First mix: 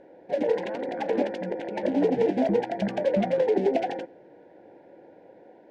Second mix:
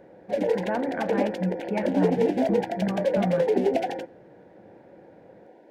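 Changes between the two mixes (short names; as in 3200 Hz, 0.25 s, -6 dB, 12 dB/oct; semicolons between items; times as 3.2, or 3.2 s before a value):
speech +11.5 dB; first sound: remove air absorption 76 m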